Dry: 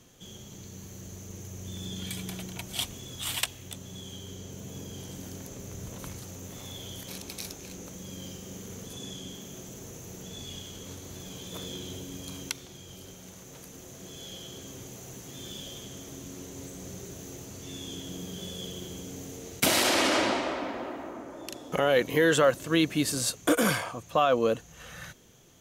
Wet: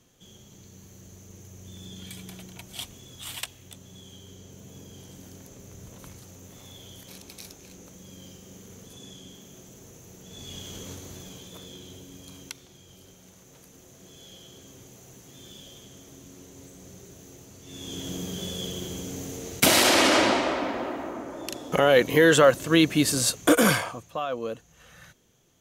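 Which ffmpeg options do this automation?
ffmpeg -i in.wav -af "volume=14dB,afade=type=in:start_time=10.24:duration=0.52:silence=0.375837,afade=type=out:start_time=10.76:duration=0.83:silence=0.354813,afade=type=in:start_time=17.65:duration=0.42:silence=0.298538,afade=type=out:start_time=23.73:duration=0.4:silence=0.251189" out.wav

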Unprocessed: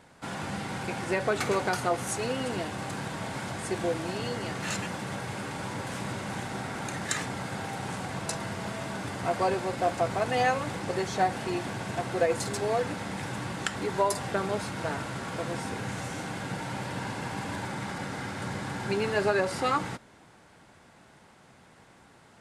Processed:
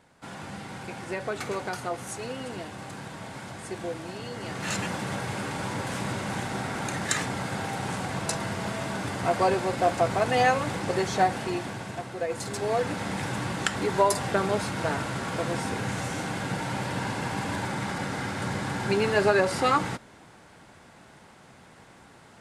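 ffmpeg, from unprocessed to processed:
ffmpeg -i in.wav -af "volume=14dB,afade=type=in:start_time=4.31:duration=0.55:silence=0.398107,afade=type=out:start_time=11.15:duration=1.03:silence=0.316228,afade=type=in:start_time=12.18:duration=0.9:silence=0.298538" out.wav

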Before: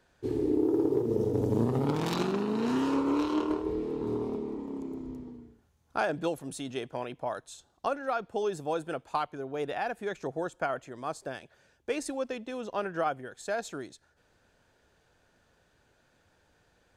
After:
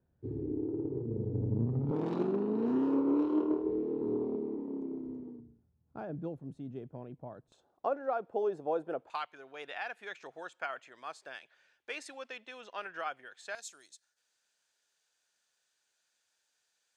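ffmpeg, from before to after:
ffmpeg -i in.wav -af "asetnsamples=nb_out_samples=441:pad=0,asendcmd='1.91 bandpass f 340;5.4 bandpass f 140;7.52 bandpass f 540;9.1 bandpass f 2400;13.55 bandpass f 7200',bandpass=frequency=110:width_type=q:width=0.99:csg=0" out.wav

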